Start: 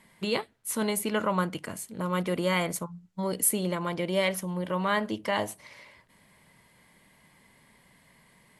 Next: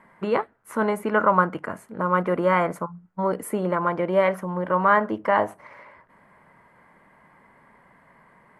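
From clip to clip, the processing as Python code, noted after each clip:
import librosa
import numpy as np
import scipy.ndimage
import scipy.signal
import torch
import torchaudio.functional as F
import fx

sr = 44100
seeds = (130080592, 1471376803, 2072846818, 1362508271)

y = fx.curve_eq(x, sr, hz=(110.0, 1400.0, 3700.0), db=(0, 12, -14))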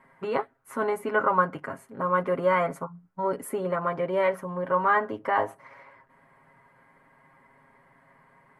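y = x + 0.74 * np.pad(x, (int(7.4 * sr / 1000.0), 0))[:len(x)]
y = y * librosa.db_to_amplitude(-5.5)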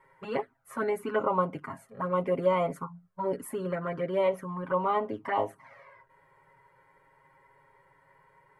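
y = fx.env_flanger(x, sr, rest_ms=2.2, full_db=-21.0)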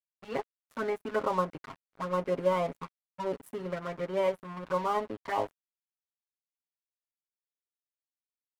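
y = np.sign(x) * np.maximum(np.abs(x) - 10.0 ** (-41.0 / 20.0), 0.0)
y = y * librosa.db_to_amplitude(-1.0)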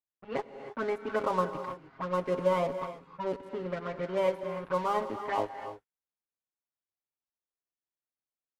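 y = fx.env_lowpass(x, sr, base_hz=1400.0, full_db=-26.0)
y = fx.rev_gated(y, sr, seeds[0], gate_ms=340, shape='rising', drr_db=9.5)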